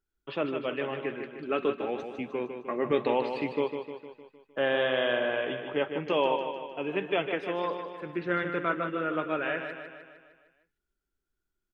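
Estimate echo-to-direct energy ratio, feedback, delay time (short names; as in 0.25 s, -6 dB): -6.0 dB, 55%, 0.153 s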